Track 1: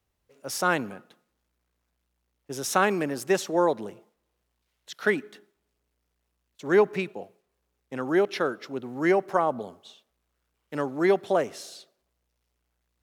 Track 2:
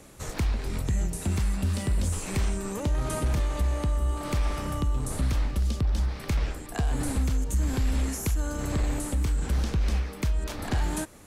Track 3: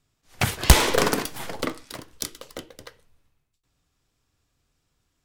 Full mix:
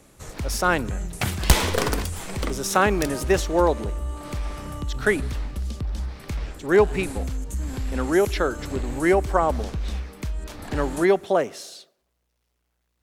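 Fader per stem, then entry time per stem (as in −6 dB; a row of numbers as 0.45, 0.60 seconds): +3.0, −3.0, −3.0 decibels; 0.00, 0.00, 0.80 seconds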